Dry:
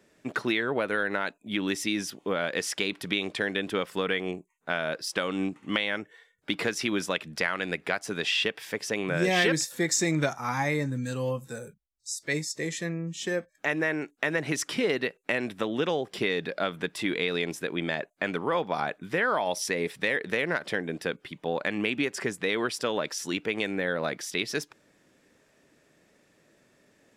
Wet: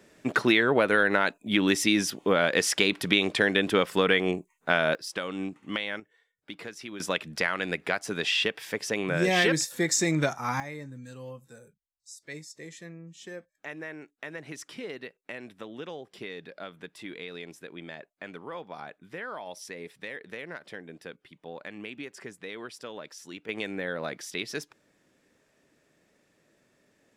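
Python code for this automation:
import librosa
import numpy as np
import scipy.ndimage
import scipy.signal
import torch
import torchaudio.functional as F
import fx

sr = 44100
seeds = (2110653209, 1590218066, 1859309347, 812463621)

y = fx.gain(x, sr, db=fx.steps((0.0, 5.5), (4.95, -4.0), (6.0, -12.0), (7.0, 0.5), (10.6, -12.0), (23.49, -4.0)))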